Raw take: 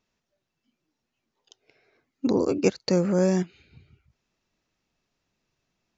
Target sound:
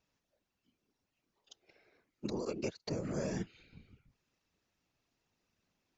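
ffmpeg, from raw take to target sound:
ffmpeg -i in.wav -filter_complex "[0:a]acrossover=split=1500|6000[link_01][link_02][link_03];[link_01]acompressor=threshold=-33dB:ratio=4[link_04];[link_02]acompressor=threshold=-45dB:ratio=4[link_05];[link_03]acompressor=threshold=-55dB:ratio=4[link_06];[link_04][link_05][link_06]amix=inputs=3:normalize=0,afftfilt=real='hypot(re,im)*cos(2*PI*random(0))':imag='hypot(re,im)*sin(2*PI*random(1))':win_size=512:overlap=0.75,volume=2.5dB" out.wav

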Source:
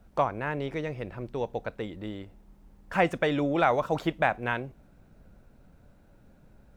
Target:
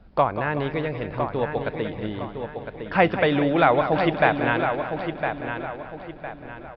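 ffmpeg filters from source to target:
ffmpeg -i in.wav -filter_complex "[0:a]asplit=2[link_01][link_02];[link_02]aecho=0:1:187|374|561|748|935|1122|1309:0.282|0.166|0.0981|0.0579|0.0342|0.0201|0.0119[link_03];[link_01][link_03]amix=inputs=2:normalize=0,aresample=11025,aresample=44100,asplit=2[link_04][link_05];[link_05]adelay=1008,lowpass=frequency=4100:poles=1,volume=-7dB,asplit=2[link_06][link_07];[link_07]adelay=1008,lowpass=frequency=4100:poles=1,volume=0.37,asplit=2[link_08][link_09];[link_09]adelay=1008,lowpass=frequency=4100:poles=1,volume=0.37,asplit=2[link_10][link_11];[link_11]adelay=1008,lowpass=frequency=4100:poles=1,volume=0.37[link_12];[link_06][link_08][link_10][link_12]amix=inputs=4:normalize=0[link_13];[link_04][link_13]amix=inputs=2:normalize=0,volume=5.5dB" out.wav

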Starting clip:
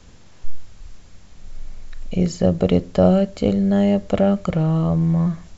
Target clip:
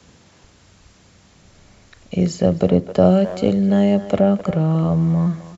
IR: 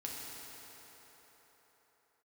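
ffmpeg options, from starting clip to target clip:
-filter_complex "[0:a]highpass=97,acrossover=split=260|1300[link_01][link_02][link_03];[link_03]alimiter=limit=-23dB:level=0:latency=1:release=368[link_04];[link_01][link_02][link_04]amix=inputs=3:normalize=0,asplit=2[link_05][link_06];[link_06]adelay=260,highpass=300,lowpass=3400,asoftclip=type=hard:threshold=-11dB,volume=-12dB[link_07];[link_05][link_07]amix=inputs=2:normalize=0,volume=1.5dB"

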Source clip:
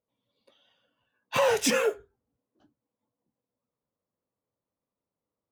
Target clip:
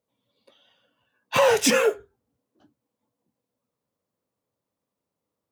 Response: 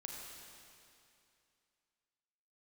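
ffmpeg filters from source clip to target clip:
-af "highpass=64,volume=5dB"

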